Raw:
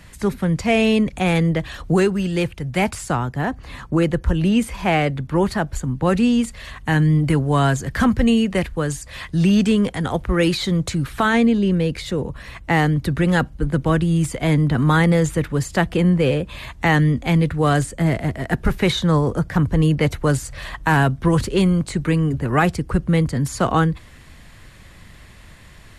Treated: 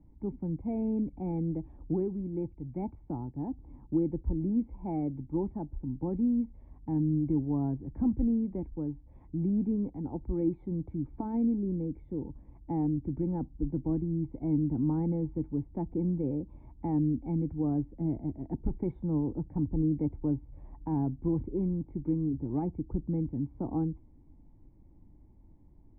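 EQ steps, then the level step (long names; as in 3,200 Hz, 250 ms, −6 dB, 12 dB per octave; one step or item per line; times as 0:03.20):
formant resonators in series u
low-shelf EQ 91 Hz +12 dB
−5.5 dB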